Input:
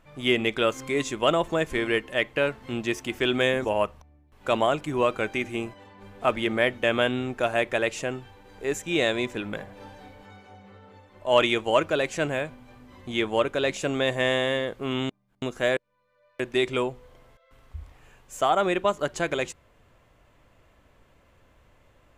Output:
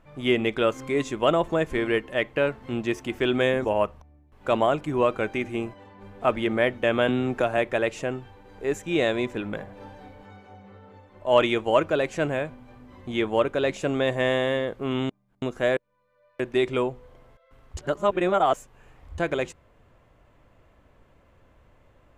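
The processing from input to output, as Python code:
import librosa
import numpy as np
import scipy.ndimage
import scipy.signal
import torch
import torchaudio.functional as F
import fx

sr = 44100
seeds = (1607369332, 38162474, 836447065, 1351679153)

y = fx.band_squash(x, sr, depth_pct=70, at=(7.08, 7.58))
y = fx.edit(y, sr, fx.reverse_span(start_s=17.77, length_s=1.41), tone=tone)
y = fx.high_shelf(y, sr, hz=2200.0, db=-8.5)
y = y * librosa.db_to_amplitude(2.0)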